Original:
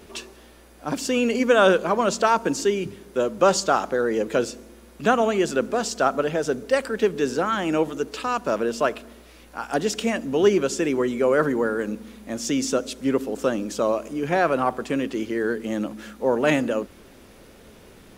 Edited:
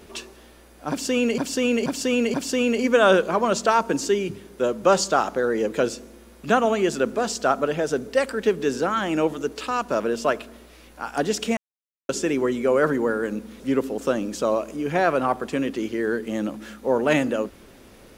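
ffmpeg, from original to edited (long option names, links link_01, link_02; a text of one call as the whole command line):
ffmpeg -i in.wav -filter_complex "[0:a]asplit=7[link_01][link_02][link_03][link_04][link_05][link_06][link_07];[link_01]atrim=end=1.382[link_08];[link_02]atrim=start=0.898:end=1.382[link_09];[link_03]atrim=start=0.898:end=1.382[link_10];[link_04]atrim=start=0.898:end=10.13,asetpts=PTS-STARTPTS,afade=type=out:start_time=9.228:duration=0.004:curve=hsin[link_11];[link_05]atrim=start=10.13:end=10.65,asetpts=PTS-STARTPTS,volume=0[link_12];[link_06]atrim=start=10.65:end=12.162,asetpts=PTS-STARTPTS,afade=type=in:duration=0.004:curve=hsin[link_13];[link_07]atrim=start=12.968[link_14];[link_08][link_09]acrossfade=duration=0.004:curve1=hsin:curve2=hsin[link_15];[link_15][link_10]acrossfade=duration=0.004:curve1=hsin:curve2=hsin[link_16];[link_11][link_12][link_13]concat=n=3:v=0:a=1[link_17];[link_16][link_17]acrossfade=duration=0.004:curve1=hsin:curve2=hsin[link_18];[link_18][link_14]acrossfade=duration=0.004:curve1=hsin:curve2=hsin" out.wav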